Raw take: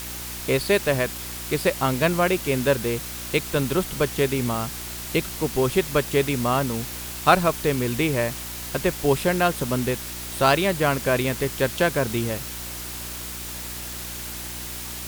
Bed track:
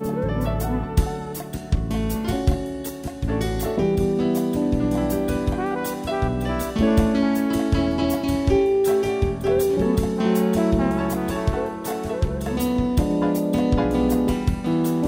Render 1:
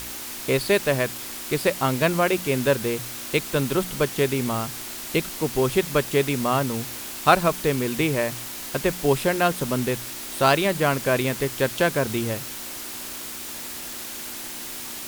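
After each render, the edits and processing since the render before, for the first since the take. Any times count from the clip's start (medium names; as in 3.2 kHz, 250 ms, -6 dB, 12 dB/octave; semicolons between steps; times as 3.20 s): de-hum 60 Hz, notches 3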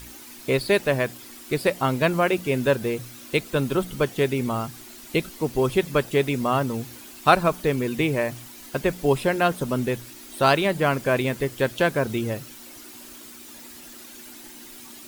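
noise reduction 11 dB, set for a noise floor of -35 dBFS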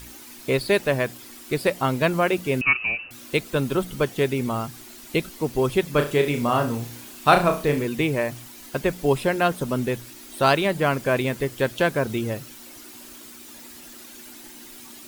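2.61–3.11 s: frequency inversion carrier 2.8 kHz; 5.92–7.85 s: flutter echo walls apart 5.8 m, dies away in 0.32 s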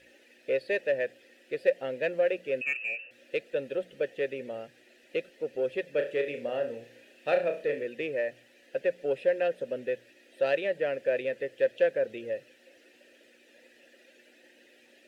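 vowel filter e; in parallel at -9 dB: saturation -29.5 dBFS, distortion -8 dB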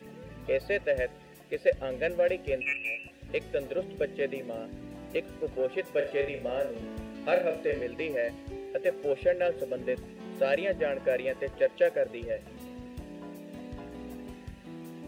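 add bed track -22.5 dB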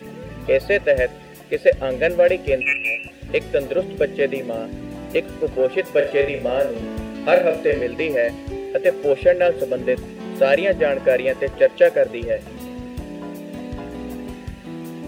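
trim +11 dB; peak limiter -2 dBFS, peak gain reduction 1.5 dB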